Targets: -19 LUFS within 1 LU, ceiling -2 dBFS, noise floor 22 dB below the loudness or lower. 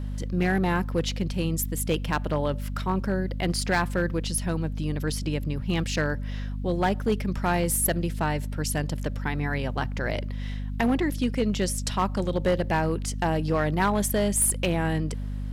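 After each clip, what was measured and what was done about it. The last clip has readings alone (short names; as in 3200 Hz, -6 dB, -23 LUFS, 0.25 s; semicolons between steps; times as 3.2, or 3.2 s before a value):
clipped 0.8%; flat tops at -16.5 dBFS; hum 50 Hz; harmonics up to 250 Hz; hum level -29 dBFS; loudness -27.0 LUFS; peak -16.5 dBFS; loudness target -19.0 LUFS
-> clip repair -16.5 dBFS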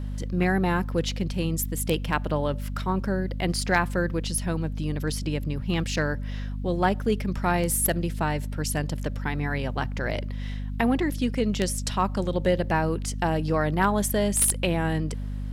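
clipped 0.0%; hum 50 Hz; harmonics up to 250 Hz; hum level -29 dBFS
-> notches 50/100/150/200/250 Hz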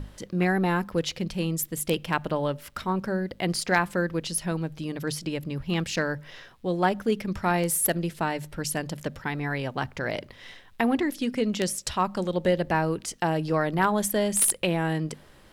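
hum none; loudness -27.0 LUFS; peak -6.5 dBFS; loudness target -19.0 LUFS
-> gain +8 dB; limiter -2 dBFS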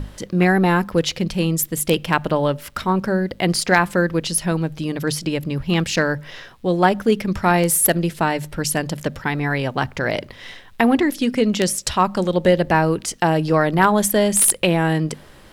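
loudness -19.5 LUFS; peak -2.0 dBFS; noise floor -45 dBFS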